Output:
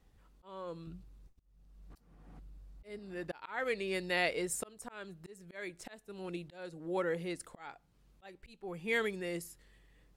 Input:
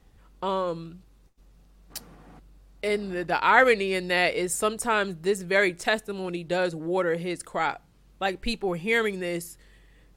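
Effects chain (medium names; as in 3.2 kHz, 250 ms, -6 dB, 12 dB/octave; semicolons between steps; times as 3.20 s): 0.87–2.99 s: bass shelf 170 Hz +10.5 dB; slow attack 479 ms; trim -8.5 dB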